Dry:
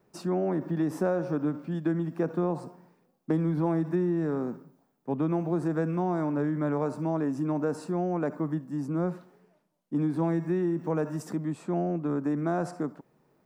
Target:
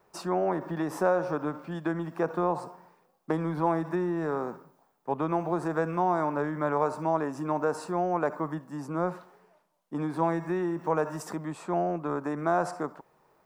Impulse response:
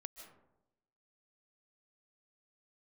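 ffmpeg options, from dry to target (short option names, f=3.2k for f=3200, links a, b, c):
-af "equalizer=f=125:t=o:w=1:g=-7,equalizer=f=250:t=o:w=1:g=-10,equalizer=f=1k:t=o:w=1:g=6,volume=3.5dB"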